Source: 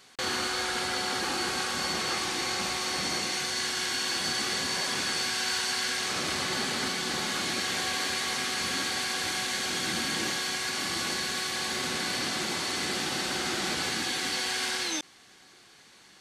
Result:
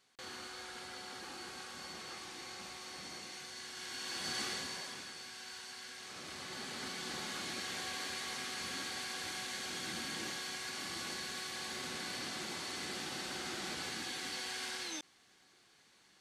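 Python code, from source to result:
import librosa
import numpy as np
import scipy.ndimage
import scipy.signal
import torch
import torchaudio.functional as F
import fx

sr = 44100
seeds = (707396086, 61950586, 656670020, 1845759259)

y = fx.gain(x, sr, db=fx.line((3.67, -17.0), (4.41, -8.0), (5.14, -19.0), (5.95, -19.0), (7.05, -11.0)))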